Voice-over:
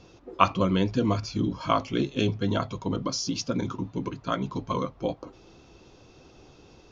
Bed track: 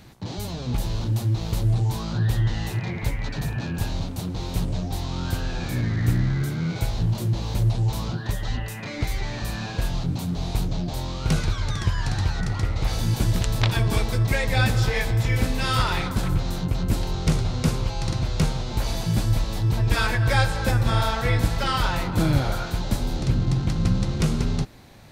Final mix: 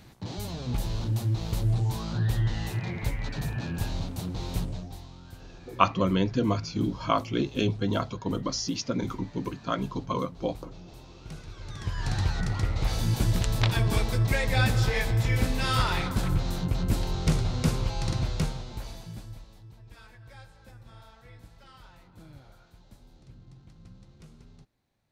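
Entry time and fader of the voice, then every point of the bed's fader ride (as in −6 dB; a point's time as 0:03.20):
5.40 s, −1.0 dB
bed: 0:04.56 −4 dB
0:05.21 −20 dB
0:11.46 −20 dB
0:12.12 −3 dB
0:18.23 −3 dB
0:19.78 −29 dB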